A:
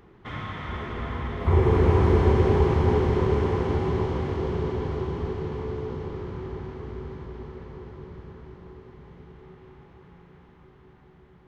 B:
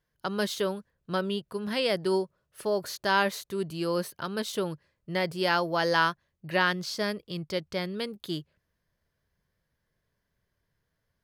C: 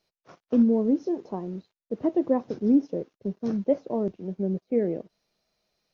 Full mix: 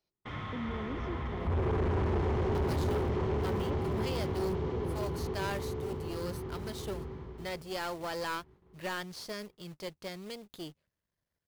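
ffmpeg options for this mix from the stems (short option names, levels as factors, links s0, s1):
-filter_complex "[0:a]agate=range=0.0158:threshold=0.00631:ratio=16:detection=peak,volume=0.596,afade=t=out:st=7.15:d=0.53:silence=0.237137[s0];[1:a]aeval=exprs='if(lt(val(0),0),0.251*val(0),val(0))':c=same,highpass=f=42:p=1,acrusher=bits=3:mode=log:mix=0:aa=0.000001,adelay=2300,volume=0.531[s1];[2:a]alimiter=limit=0.0794:level=0:latency=1,volume=0.299[s2];[s0][s1][s2]amix=inputs=3:normalize=0,equalizer=f=1600:w=3.9:g=-2.5,asoftclip=type=tanh:threshold=0.0473"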